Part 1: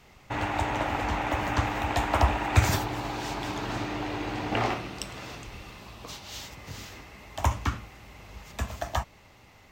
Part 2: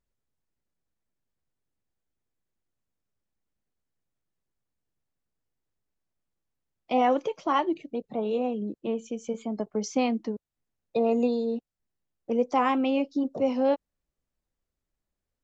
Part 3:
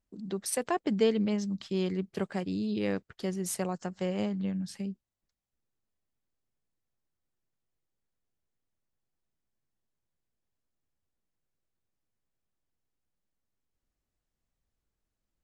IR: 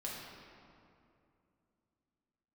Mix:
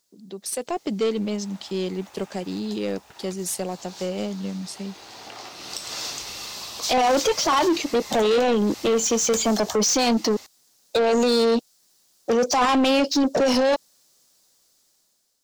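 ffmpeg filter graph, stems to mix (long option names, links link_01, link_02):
-filter_complex "[0:a]bandreject=frequency=60:width_type=h:width=6,bandreject=frequency=120:width_type=h:width=6,bandreject=frequency=180:width_type=h:width=6,bandreject=frequency=240:width_type=h:width=6,bandreject=frequency=300:width_type=h:width=6,acompressor=threshold=-37dB:ratio=12,adelay=750,volume=-14.5dB[link_01];[1:a]highpass=frequency=110:width=0.5412,highpass=frequency=110:width=1.3066,dynaudnorm=framelen=110:gausssize=21:maxgain=3dB,volume=-3dB[link_02];[2:a]equalizer=frequency=1500:width_type=o:width=1.5:gain=-14,volume=-10.5dB,asplit=2[link_03][link_04];[link_04]apad=whole_len=461407[link_05];[link_01][link_05]sidechaincompress=threshold=-55dB:ratio=8:attack=27:release=1160[link_06];[link_06][link_02]amix=inputs=2:normalize=0,highshelf=frequency=3400:width_type=q:width=1.5:gain=11.5,alimiter=limit=-24dB:level=0:latency=1:release=21,volume=0dB[link_07];[link_03][link_07]amix=inputs=2:normalize=0,highshelf=frequency=7000:gain=5,dynaudnorm=framelen=160:gausssize=7:maxgain=8.5dB,asplit=2[link_08][link_09];[link_09]highpass=frequency=720:poles=1,volume=21dB,asoftclip=type=tanh:threshold=-12.5dB[link_10];[link_08][link_10]amix=inputs=2:normalize=0,lowpass=frequency=4800:poles=1,volume=-6dB"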